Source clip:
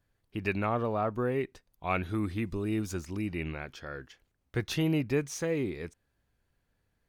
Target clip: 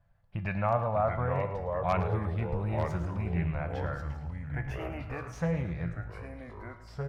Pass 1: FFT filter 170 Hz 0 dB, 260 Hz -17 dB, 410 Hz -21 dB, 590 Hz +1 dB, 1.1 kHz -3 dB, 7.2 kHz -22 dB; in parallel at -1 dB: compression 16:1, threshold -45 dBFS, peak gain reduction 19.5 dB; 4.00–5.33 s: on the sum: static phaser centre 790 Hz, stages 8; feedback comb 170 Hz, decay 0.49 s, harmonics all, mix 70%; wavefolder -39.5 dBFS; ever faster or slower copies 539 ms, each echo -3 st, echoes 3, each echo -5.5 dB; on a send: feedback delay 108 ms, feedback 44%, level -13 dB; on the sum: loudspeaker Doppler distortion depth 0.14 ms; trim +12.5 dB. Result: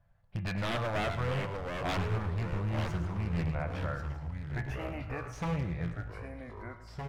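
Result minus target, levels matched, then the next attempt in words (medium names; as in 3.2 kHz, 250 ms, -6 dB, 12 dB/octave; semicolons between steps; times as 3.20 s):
wavefolder: distortion +29 dB
FFT filter 170 Hz 0 dB, 260 Hz -17 dB, 410 Hz -21 dB, 590 Hz +1 dB, 1.1 kHz -3 dB, 7.2 kHz -22 dB; in parallel at -1 dB: compression 16:1, threshold -45 dBFS, peak gain reduction 19.5 dB; 4.00–5.33 s: on the sum: static phaser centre 790 Hz, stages 8; feedback comb 170 Hz, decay 0.49 s, harmonics all, mix 70%; wavefolder -27.5 dBFS; ever faster or slower copies 539 ms, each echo -3 st, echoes 3, each echo -5.5 dB; on a send: feedback delay 108 ms, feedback 44%, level -13 dB; on the sum: loudspeaker Doppler distortion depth 0.14 ms; trim +12.5 dB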